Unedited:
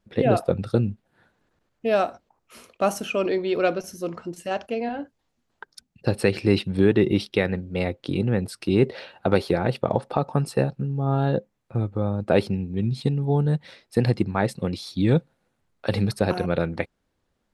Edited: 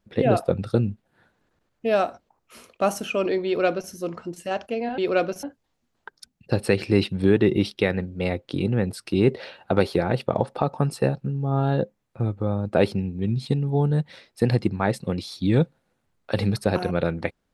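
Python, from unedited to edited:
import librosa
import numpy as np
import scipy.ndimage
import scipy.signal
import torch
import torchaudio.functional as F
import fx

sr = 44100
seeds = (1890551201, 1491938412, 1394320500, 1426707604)

y = fx.edit(x, sr, fx.duplicate(start_s=3.46, length_s=0.45, to_s=4.98), tone=tone)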